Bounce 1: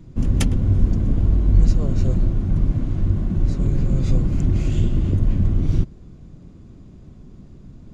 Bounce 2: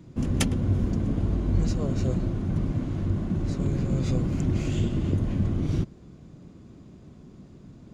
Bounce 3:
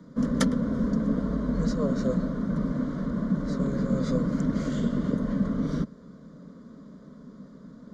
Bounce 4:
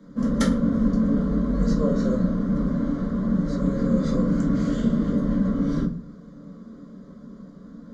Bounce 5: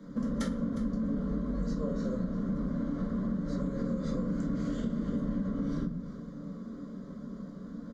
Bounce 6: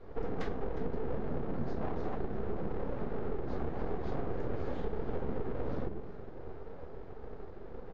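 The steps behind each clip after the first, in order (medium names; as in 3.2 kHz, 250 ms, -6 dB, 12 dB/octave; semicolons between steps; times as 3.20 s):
high-pass 170 Hz 6 dB/octave
three-band isolator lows -12 dB, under 170 Hz, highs -15 dB, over 5 kHz; static phaser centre 520 Hz, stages 8; trim +7 dB
simulated room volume 190 m³, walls furnished, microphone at 2.2 m; trim -2.5 dB
compression 5:1, threshold -30 dBFS, peak gain reduction 13 dB; delay 359 ms -14.5 dB
full-wave rectifier; distance through air 230 m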